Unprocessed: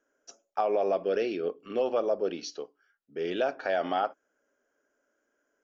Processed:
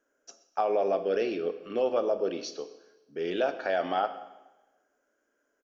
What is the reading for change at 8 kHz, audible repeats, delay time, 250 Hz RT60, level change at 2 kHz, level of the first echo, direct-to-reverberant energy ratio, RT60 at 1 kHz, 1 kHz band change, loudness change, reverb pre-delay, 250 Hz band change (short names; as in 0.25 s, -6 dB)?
n/a, 1, 0.129 s, 1.0 s, +0.5 dB, -20.5 dB, 10.5 dB, 1.1 s, +0.5 dB, +0.5 dB, 7 ms, +0.5 dB